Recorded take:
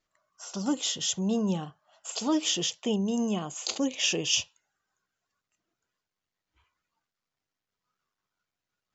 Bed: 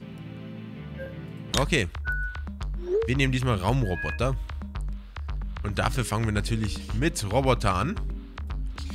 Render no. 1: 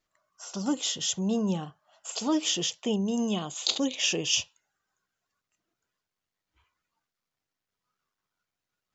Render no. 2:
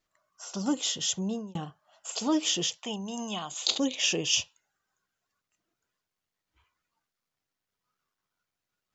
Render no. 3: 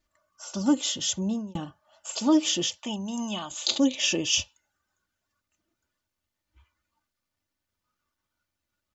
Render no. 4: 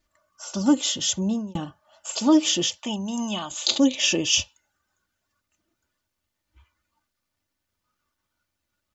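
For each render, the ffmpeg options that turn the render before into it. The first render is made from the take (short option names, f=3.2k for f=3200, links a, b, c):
-filter_complex "[0:a]asettb=1/sr,asplit=3[a][b][c];[a]atrim=end=3.184[d];[b]atrim=start=3.18:end=3.96,asetpts=PTS-STARTPTS,afade=t=in:d=0.004:c=qsin,afade=t=out:st=0.776:d=0.004:c=qsin,equalizer=f=3.7k:t=o:w=0.45:g=12.5[e];[c]atrim=start=3.956[f];[d][e]acrossfade=d=0.004:c1=hsin:c2=qsin[g];[g][f]acrossfade=d=0.004:c1=qsin:c2=hsin"
-filter_complex "[0:a]asettb=1/sr,asplit=3[a][b][c];[a]atrim=end=2.774[d];[b]atrim=start=2.77:end=3.51,asetpts=PTS-STARTPTS,afade=t=in:d=0.004:c=qsin,afade=t=out:st=0.736:d=0.004:c=qsin,lowshelf=f=620:t=q:w=1.5:g=-8[e];[c]atrim=start=3.506[f];[d][e]acrossfade=d=0.004:c1=hsin:c2=qsin[g];[g][f]acrossfade=d=0.004:c1=qsin:c2=hsin,asplit=2[h][i];[h]atrim=end=1.55,asetpts=PTS-STARTPTS,afade=t=out:st=1.14:d=0.41[j];[i]atrim=start=1.55,asetpts=PTS-STARTPTS,afade=t=in:d=0.004:c=hsin[k];[j][k]concat=n=2:v=0:a=1"
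-af "equalizer=f=66:t=o:w=2.7:g=11,aecho=1:1:3.4:0.56"
-af "volume=3.5dB"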